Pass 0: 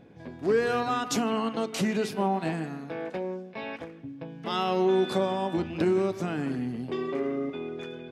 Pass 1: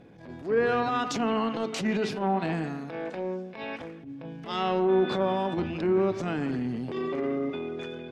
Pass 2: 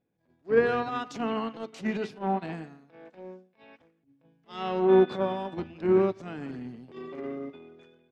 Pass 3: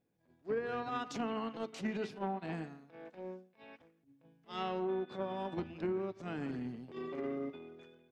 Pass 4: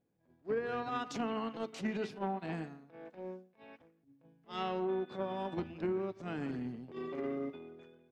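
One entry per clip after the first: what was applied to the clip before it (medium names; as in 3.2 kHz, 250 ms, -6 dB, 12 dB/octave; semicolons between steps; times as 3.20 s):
low-pass that closes with the level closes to 2.1 kHz, closed at -20 dBFS; transient shaper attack -12 dB, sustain +3 dB; trim +1.5 dB
upward expansion 2.5:1, over -42 dBFS; trim +4.5 dB
compression 20:1, threshold -31 dBFS, peak gain reduction 17 dB; trim -1.5 dB
tape noise reduction on one side only decoder only; trim +1 dB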